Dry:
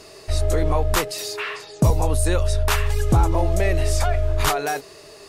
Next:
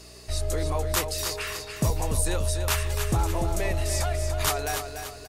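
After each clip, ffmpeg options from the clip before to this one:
ffmpeg -i in.wav -filter_complex "[0:a]highshelf=frequency=3300:gain=8.5,aeval=exprs='val(0)+0.00794*(sin(2*PI*60*n/s)+sin(2*PI*2*60*n/s)/2+sin(2*PI*3*60*n/s)/3+sin(2*PI*4*60*n/s)/4+sin(2*PI*5*60*n/s)/5)':channel_layout=same,asplit=2[link_01][link_02];[link_02]aecho=0:1:291|582|873|1164|1455:0.422|0.186|0.0816|0.0359|0.0158[link_03];[link_01][link_03]amix=inputs=2:normalize=0,volume=-8dB" out.wav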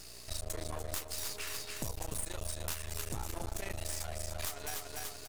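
ffmpeg -i in.wav -af "highshelf=frequency=3400:gain=9.5,acompressor=threshold=-28dB:ratio=6,aeval=exprs='max(val(0),0)':channel_layout=same,volume=-4dB" out.wav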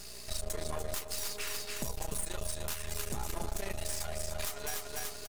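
ffmpeg -i in.wav -filter_complex "[0:a]aecho=1:1:4.9:0.41,asplit=2[link_01][link_02];[link_02]alimiter=level_in=2dB:limit=-24dB:level=0:latency=1:release=219,volume=-2dB,volume=0dB[link_03];[link_01][link_03]amix=inputs=2:normalize=0,volume=-3.5dB" out.wav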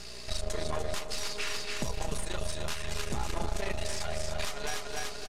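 ffmpeg -i in.wav -af "crystalizer=i=1.5:c=0,lowpass=3900,aecho=1:1:247:0.237,volume=4.5dB" out.wav

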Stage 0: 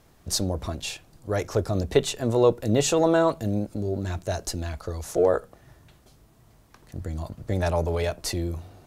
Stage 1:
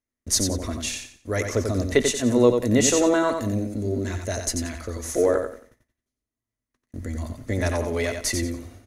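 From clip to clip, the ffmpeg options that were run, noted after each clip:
ffmpeg -i in.wav -filter_complex "[0:a]agate=range=-34dB:threshold=-47dB:ratio=16:detection=peak,equalizer=frequency=160:width_type=o:width=0.33:gain=-11,equalizer=frequency=250:width_type=o:width=0.33:gain=10,equalizer=frequency=800:width_type=o:width=0.33:gain=-7,equalizer=frequency=2000:width_type=o:width=0.33:gain=10,equalizer=frequency=6300:width_type=o:width=0.33:gain=8,equalizer=frequency=10000:width_type=o:width=0.33:gain=8,asplit=2[link_01][link_02];[link_02]aecho=0:1:90|180|270|360:0.501|0.14|0.0393|0.011[link_03];[link_01][link_03]amix=inputs=2:normalize=0" out.wav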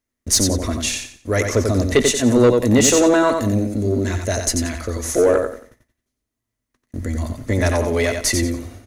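ffmpeg -i in.wav -af "asoftclip=type=tanh:threshold=-13dB,volume=7dB" out.wav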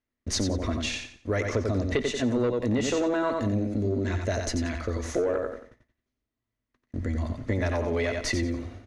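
ffmpeg -i in.wav -af "lowpass=3900,acompressor=threshold=-19dB:ratio=6,volume=-4dB" out.wav

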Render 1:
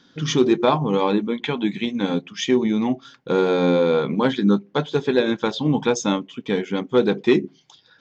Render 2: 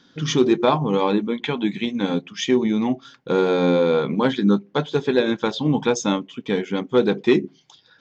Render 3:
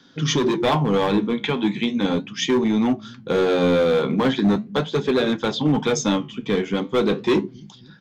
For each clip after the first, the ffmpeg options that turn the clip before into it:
ffmpeg -i in.wav -af anull out.wav
ffmpeg -i in.wav -filter_complex "[0:a]acrossover=split=150|2700[link_01][link_02][link_03];[link_01]aecho=1:1:270|540|810|1080|1350|1620|1890:0.376|0.214|0.122|0.0696|0.0397|0.0226|0.0129[link_04];[link_02]asoftclip=type=hard:threshold=-18dB[link_05];[link_04][link_05][link_03]amix=inputs=3:normalize=0,flanger=delay=7.2:depth=8.9:regen=-70:speed=0.38:shape=sinusoidal,volume=6.5dB" out.wav

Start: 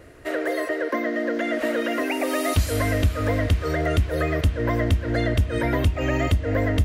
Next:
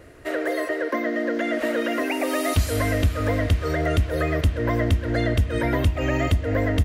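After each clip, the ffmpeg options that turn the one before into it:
ffmpeg -i in.wav -af "aecho=1:1:129:0.0944" out.wav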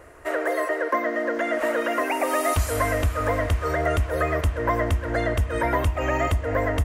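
ffmpeg -i in.wav -af "equalizer=frequency=125:width_type=o:width=1:gain=-6,equalizer=frequency=250:width_type=o:width=1:gain=-6,equalizer=frequency=1000:width_type=o:width=1:gain=8,equalizer=frequency=4000:width_type=o:width=1:gain=-7,equalizer=frequency=8000:width_type=o:width=1:gain=3" out.wav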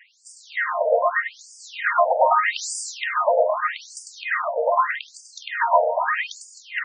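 ffmpeg -i in.wav -filter_complex "[0:a]asplit=2[link_01][link_02];[link_02]aecho=0:1:100|260|516|925.6|1581:0.631|0.398|0.251|0.158|0.1[link_03];[link_01][link_03]amix=inputs=2:normalize=0,afftfilt=real='re*between(b*sr/1024,630*pow(6700/630,0.5+0.5*sin(2*PI*0.81*pts/sr))/1.41,630*pow(6700/630,0.5+0.5*sin(2*PI*0.81*pts/sr))*1.41)':imag='im*between(b*sr/1024,630*pow(6700/630,0.5+0.5*sin(2*PI*0.81*pts/sr))/1.41,630*pow(6700/630,0.5+0.5*sin(2*PI*0.81*pts/sr))*1.41)':win_size=1024:overlap=0.75,volume=8dB" out.wav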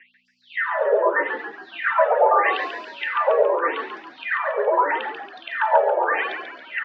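ffmpeg -i in.wav -filter_complex "[0:a]aeval=exprs='val(0)+0.002*(sin(2*PI*60*n/s)+sin(2*PI*2*60*n/s)/2+sin(2*PI*3*60*n/s)/3+sin(2*PI*4*60*n/s)/4+sin(2*PI*5*60*n/s)/5)':channel_layout=same,asplit=7[link_01][link_02][link_03][link_04][link_05][link_06][link_07];[link_02]adelay=139,afreqshift=-62,volume=-7dB[link_08];[link_03]adelay=278,afreqshift=-124,volume=-13dB[link_09];[link_04]adelay=417,afreqshift=-186,volume=-19dB[link_10];[link_05]adelay=556,afreqshift=-248,volume=-25.1dB[link_11];[link_06]adelay=695,afreqshift=-310,volume=-31.1dB[link_12];[link_07]adelay=834,afreqshift=-372,volume=-37.1dB[link_13];[link_01][link_08][link_09][link_10][link_11][link_12][link_13]amix=inputs=7:normalize=0,highpass=frequency=360:width_type=q:width=0.5412,highpass=frequency=360:width_type=q:width=1.307,lowpass=frequency=3500:width_type=q:width=0.5176,lowpass=frequency=3500:width_type=q:width=0.7071,lowpass=frequency=3500:width_type=q:width=1.932,afreqshift=-52" out.wav

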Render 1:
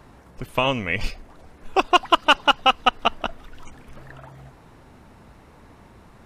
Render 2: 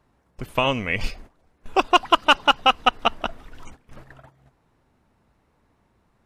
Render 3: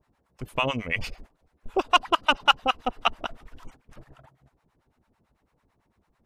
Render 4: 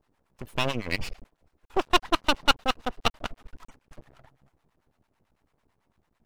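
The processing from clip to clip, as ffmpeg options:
ffmpeg -i in.wav -af "agate=range=-16dB:threshold=-40dB:ratio=16:detection=peak" out.wav
ffmpeg -i in.wav -filter_complex "[0:a]acrossover=split=670[link_01][link_02];[link_01]aeval=exprs='val(0)*(1-1/2+1/2*cos(2*PI*9*n/s))':channel_layout=same[link_03];[link_02]aeval=exprs='val(0)*(1-1/2-1/2*cos(2*PI*9*n/s))':channel_layout=same[link_04];[link_03][link_04]amix=inputs=2:normalize=0" out.wav
ffmpeg -i in.wav -af "aeval=exprs='max(val(0),0)':channel_layout=same,volume=2dB" out.wav

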